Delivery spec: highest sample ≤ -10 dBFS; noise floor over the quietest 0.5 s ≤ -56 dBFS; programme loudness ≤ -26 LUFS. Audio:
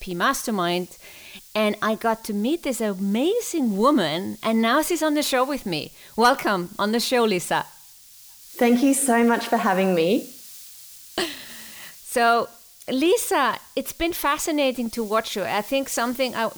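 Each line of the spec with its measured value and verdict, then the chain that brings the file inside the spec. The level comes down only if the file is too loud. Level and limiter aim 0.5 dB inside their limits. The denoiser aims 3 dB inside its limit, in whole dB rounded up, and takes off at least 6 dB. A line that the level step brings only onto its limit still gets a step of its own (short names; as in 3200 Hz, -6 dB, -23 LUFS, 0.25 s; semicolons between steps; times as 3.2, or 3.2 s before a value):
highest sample -7.5 dBFS: fail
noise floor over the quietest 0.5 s -48 dBFS: fail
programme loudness -22.5 LUFS: fail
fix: denoiser 7 dB, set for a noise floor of -48 dBFS; gain -4 dB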